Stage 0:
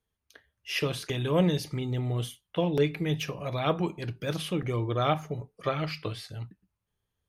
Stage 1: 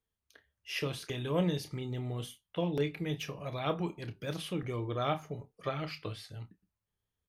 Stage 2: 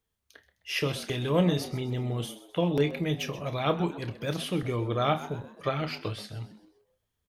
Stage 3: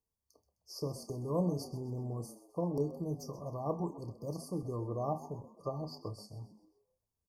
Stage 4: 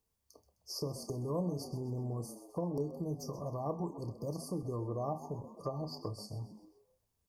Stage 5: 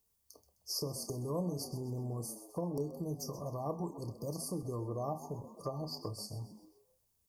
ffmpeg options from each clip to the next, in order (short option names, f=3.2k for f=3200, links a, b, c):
-filter_complex "[0:a]asplit=2[a][b];[b]adelay=29,volume=-11.5dB[c];[a][c]amix=inputs=2:normalize=0,volume=-6dB"
-filter_complex "[0:a]asplit=5[a][b][c][d][e];[b]adelay=129,afreqshift=100,volume=-15.5dB[f];[c]adelay=258,afreqshift=200,volume=-23.2dB[g];[d]adelay=387,afreqshift=300,volume=-31dB[h];[e]adelay=516,afreqshift=400,volume=-38.7dB[i];[a][f][g][h][i]amix=inputs=5:normalize=0,volume=6dB"
-af "afftfilt=real='re*(1-between(b*sr/4096,1200,4400))':imag='im*(1-between(b*sr/4096,1200,4400))':win_size=4096:overlap=0.75,volume=-8dB"
-af "acompressor=threshold=-47dB:ratio=2,volume=7dB"
-af "highshelf=f=5.3k:g=10.5,volume=-1dB"